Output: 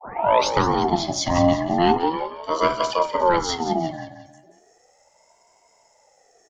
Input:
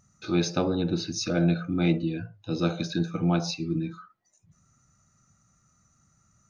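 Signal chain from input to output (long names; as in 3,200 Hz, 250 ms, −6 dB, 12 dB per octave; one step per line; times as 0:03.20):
turntable start at the beginning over 0.52 s
repeating echo 178 ms, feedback 40%, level −10.5 dB
ring modulator whose carrier an LFO sweeps 630 Hz, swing 30%, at 0.36 Hz
level +8.5 dB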